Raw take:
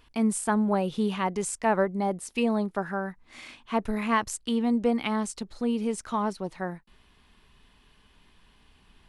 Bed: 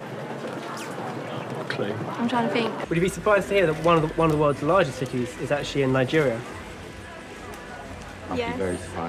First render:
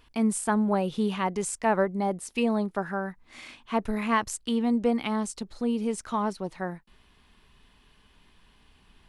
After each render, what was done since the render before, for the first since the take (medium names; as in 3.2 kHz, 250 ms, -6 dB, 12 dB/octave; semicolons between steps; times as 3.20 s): 5.00–5.88 s: dynamic bell 1.9 kHz, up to -3 dB, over -45 dBFS, Q 0.92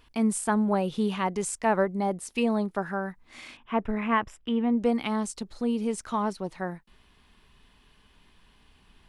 3.57–4.78 s: Savitzky-Golay filter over 25 samples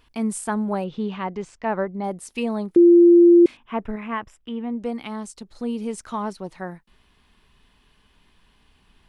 0.84–2.04 s: distance through air 180 m; 2.76–3.46 s: bleep 345 Hz -8 dBFS; 3.96–5.55 s: gain -3.5 dB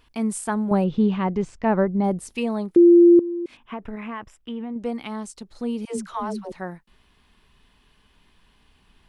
0.71–2.35 s: bass shelf 340 Hz +11.5 dB; 3.19–4.76 s: compression 8:1, threshold -27 dBFS; 5.85–6.52 s: phase dispersion lows, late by 135 ms, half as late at 340 Hz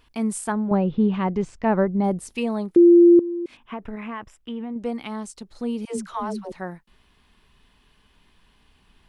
0.52–1.14 s: distance through air 230 m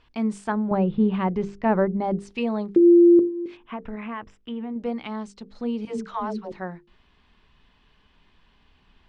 Bessel low-pass 4.3 kHz, order 4; hum notches 50/100/150/200/250/300/350/400/450/500 Hz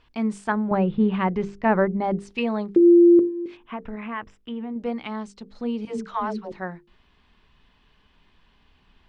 dynamic bell 1.9 kHz, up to +6 dB, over -39 dBFS, Q 0.82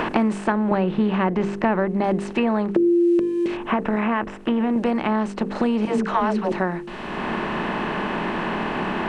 spectral levelling over time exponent 0.6; three bands compressed up and down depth 100%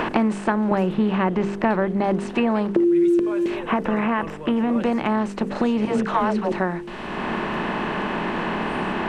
add bed -15.5 dB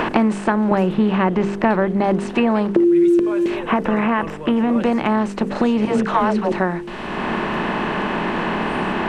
trim +3.5 dB; peak limiter -3 dBFS, peak gain reduction 1 dB